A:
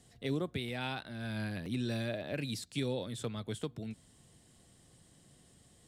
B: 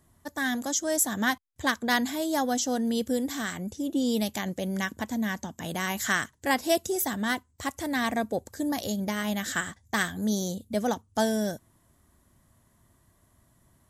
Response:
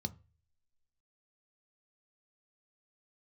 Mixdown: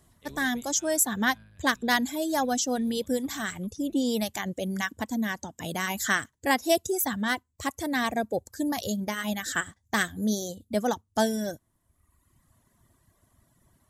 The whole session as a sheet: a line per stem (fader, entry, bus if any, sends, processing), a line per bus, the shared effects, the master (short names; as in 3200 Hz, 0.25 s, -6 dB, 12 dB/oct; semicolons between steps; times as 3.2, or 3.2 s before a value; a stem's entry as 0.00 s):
0.0 dB, 0.00 s, send -22 dB, octaver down 2 oct, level +2 dB; low shelf 330 Hz -11 dB; random-step tremolo; auto duck -14 dB, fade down 0.75 s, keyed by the second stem
+1.5 dB, 0.00 s, no send, reverb removal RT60 1.2 s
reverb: on, RT60 0.35 s, pre-delay 3 ms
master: dry